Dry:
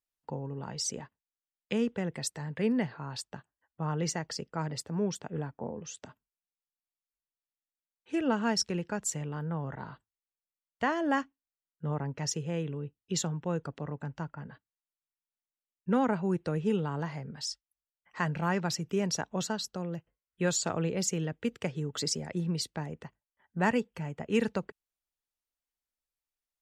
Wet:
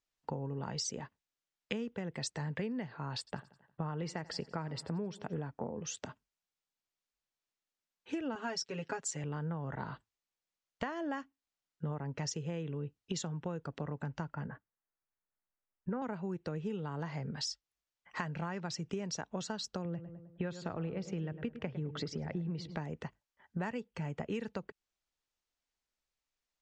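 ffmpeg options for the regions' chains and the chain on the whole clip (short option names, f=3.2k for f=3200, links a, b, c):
-filter_complex "[0:a]asettb=1/sr,asplit=3[a][b][c];[a]atrim=end=3.184[d];[b]atrim=start=3.18:end=5.38,asetpts=PTS-STARTPTS,afade=t=in:d=0.004:c=qsin,afade=t=out:st=2.196:d=0.004:c=qsin,equalizer=f=6.3k:t=o:w=0.42:g=-13.5,aecho=1:1:88|176|264|352:0.075|0.0442|0.0261|0.0154,atrim=end_sample=97020[e];[c]atrim=start=5.376[f];[d][e]acrossfade=d=0.004:c1=hsin:c2=qsin[g];[g][f]acrossfade=d=0.004:c1=qsin:c2=hsin,asettb=1/sr,asplit=3[h][i][j];[h]atrim=end=8.354[k];[i]atrim=start=8.35:end=9.24,asetpts=PTS-STARTPTS,afade=t=in:d=0.004:c=qsin,afade=t=out:st=0.886:d=0.004:c=qsin,highpass=f=290:p=1,aecho=1:1:7.3:0.91,atrim=end_sample=39249[l];[j]atrim=start=9.236[m];[k][l]acrossfade=d=0.004:c1=hsin:c2=qsin[n];[n][m]acrossfade=d=0.004:c1=qsin:c2=hsin,asettb=1/sr,asplit=3[o][p][q];[o]atrim=end=14.464[r];[p]atrim=start=14.46:end=16.02,asetpts=PTS-STARTPTS,afade=t=in:d=0.004:c=qsin,afade=t=out:st=1.556:d=0.004:c=qsin,lowpass=f=1.9k:w=0.5412,lowpass=f=1.9k:w=1.3066,asubboost=boost=9.5:cutoff=57[s];[q]atrim=start=16.016[t];[r][s]acrossfade=d=0.004:c1=hsin:c2=qsin[u];[u][t]acrossfade=d=0.004:c1=qsin:c2=hsin,asettb=1/sr,asplit=3[v][w][x];[v]atrim=end=19.854[y];[w]atrim=start=19.85:end=22.76,asetpts=PTS-STARTPTS,afade=t=in:d=0.004:c=qsin,afade=t=out:st=2.906:d=0.004:c=qsin,lowpass=2.8k,lowshelf=f=140:g=7,asplit=2[z][aa];[aa]adelay=104,lowpass=f=1.7k:p=1,volume=-13.5dB,asplit=2[ab][ac];[ac]adelay=104,lowpass=f=1.7k:p=1,volume=0.52,asplit=2[ad][ae];[ae]adelay=104,lowpass=f=1.7k:p=1,volume=0.52,asplit=2[af][ag];[ag]adelay=104,lowpass=f=1.7k:p=1,volume=0.52,asplit=2[ah][ai];[ai]adelay=104,lowpass=f=1.7k:p=1,volume=0.52[aj];[z][ab][ad][af][ah][aj]amix=inputs=6:normalize=0,atrim=end_sample=128331[ak];[x]atrim=start=22.756[al];[y][ak]acrossfade=d=0.004:c1=hsin:c2=qsin[am];[am][al]acrossfade=d=0.004:c1=qsin:c2=hsin,lowpass=f=7.3k:w=0.5412,lowpass=f=7.3k:w=1.3066,acompressor=threshold=-39dB:ratio=12,volume=4.5dB"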